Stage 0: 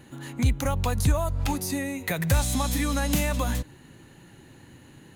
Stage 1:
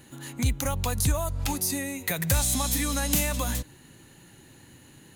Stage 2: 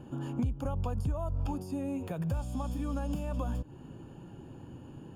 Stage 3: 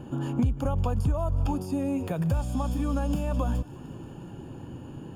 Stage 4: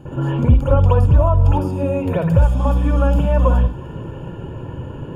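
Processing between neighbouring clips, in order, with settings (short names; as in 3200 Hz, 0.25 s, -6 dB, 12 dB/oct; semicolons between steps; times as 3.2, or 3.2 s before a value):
high shelf 3900 Hz +10 dB; gain -3 dB
compressor 6:1, threshold -35 dBFS, peak gain reduction 15 dB; running mean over 22 samples; gain +6.5 dB
thinning echo 0.181 s, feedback 80%, high-pass 830 Hz, level -18.5 dB; gain +6.5 dB
reverb, pre-delay 51 ms, DRR -12.5 dB; gain -1 dB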